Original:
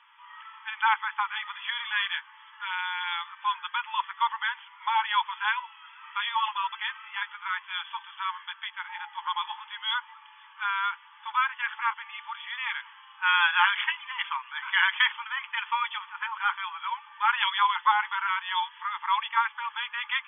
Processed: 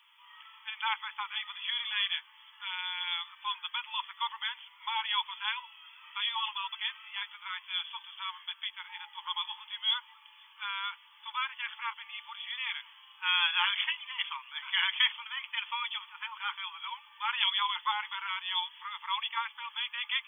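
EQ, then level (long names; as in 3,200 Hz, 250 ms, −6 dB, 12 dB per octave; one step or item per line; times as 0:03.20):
first difference
parametric band 1,600 Hz −8 dB 0.64 octaves
+9.0 dB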